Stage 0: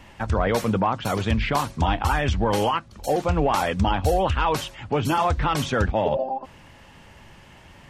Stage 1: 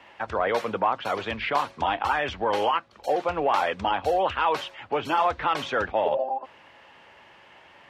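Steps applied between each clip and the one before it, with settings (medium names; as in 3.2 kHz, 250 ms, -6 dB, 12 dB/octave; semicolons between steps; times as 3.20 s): high-pass 65 Hz; three-band isolator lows -18 dB, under 360 Hz, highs -16 dB, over 4.2 kHz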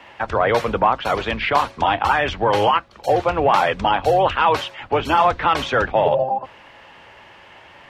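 octave divider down 2 oct, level -4 dB; trim +7 dB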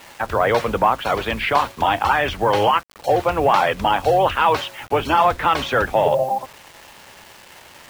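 bit crusher 7-bit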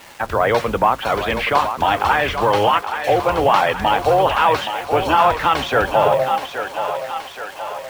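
thinning echo 824 ms, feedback 62%, high-pass 430 Hz, level -7.5 dB; trim +1 dB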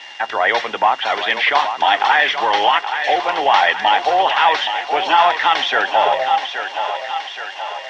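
whistle 2.8 kHz -41 dBFS; cabinet simulation 440–6000 Hz, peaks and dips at 510 Hz -7 dB, 800 Hz +5 dB, 1.2 kHz -4 dB, 1.9 kHz +10 dB, 3.4 kHz +9 dB, 5.6 kHz +5 dB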